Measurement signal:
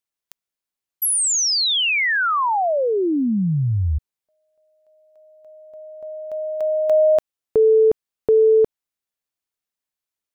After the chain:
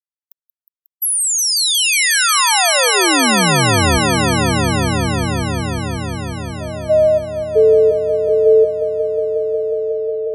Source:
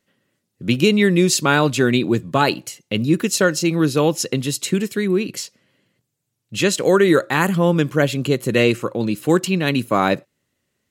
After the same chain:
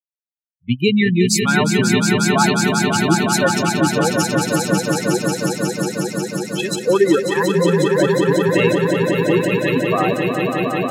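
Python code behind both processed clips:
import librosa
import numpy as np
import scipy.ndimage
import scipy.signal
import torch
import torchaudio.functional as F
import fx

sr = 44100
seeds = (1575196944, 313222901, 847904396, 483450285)

y = fx.bin_expand(x, sr, power=3.0)
y = fx.echo_swell(y, sr, ms=181, loudest=5, wet_db=-6.0)
y = F.gain(torch.from_numpy(y), 4.0).numpy()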